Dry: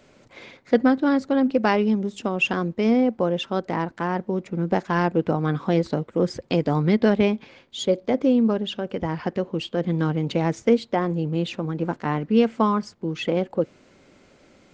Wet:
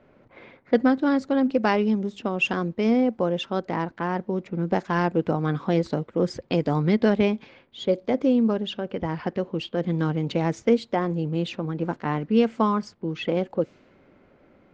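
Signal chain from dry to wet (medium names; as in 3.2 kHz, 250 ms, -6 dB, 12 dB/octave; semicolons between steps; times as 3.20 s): level-controlled noise filter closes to 1.7 kHz, open at -17.5 dBFS; trim -1.5 dB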